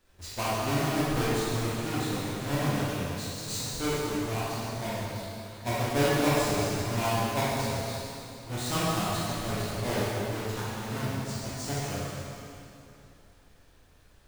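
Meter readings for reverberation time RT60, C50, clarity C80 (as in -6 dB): 2.8 s, -4.5 dB, -2.0 dB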